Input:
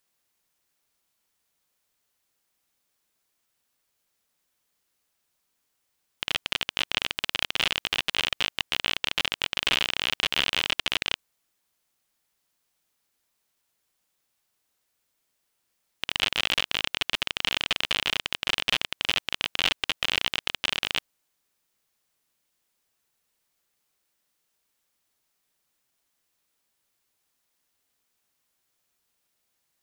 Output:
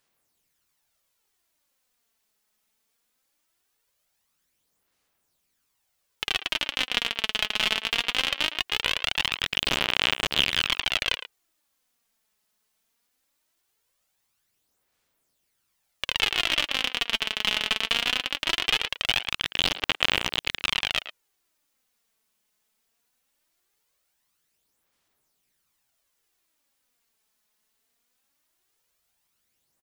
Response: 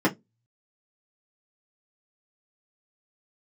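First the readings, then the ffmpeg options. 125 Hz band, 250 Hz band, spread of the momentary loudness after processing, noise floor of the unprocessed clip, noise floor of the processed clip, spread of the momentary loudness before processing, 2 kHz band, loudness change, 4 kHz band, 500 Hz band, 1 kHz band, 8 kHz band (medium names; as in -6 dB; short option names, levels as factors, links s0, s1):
+2.0 dB, +2.5 dB, 4 LU, -77 dBFS, -75 dBFS, 4 LU, +1.5 dB, +1.5 dB, +1.5 dB, +2.0 dB, +2.0 dB, +1.0 dB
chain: -filter_complex "[0:a]aphaser=in_gain=1:out_gain=1:delay=4.7:decay=0.49:speed=0.2:type=sinusoidal,asplit=2[s0][s1];[s1]adelay=110,highpass=300,lowpass=3400,asoftclip=type=hard:threshold=0.282,volume=0.282[s2];[s0][s2]amix=inputs=2:normalize=0"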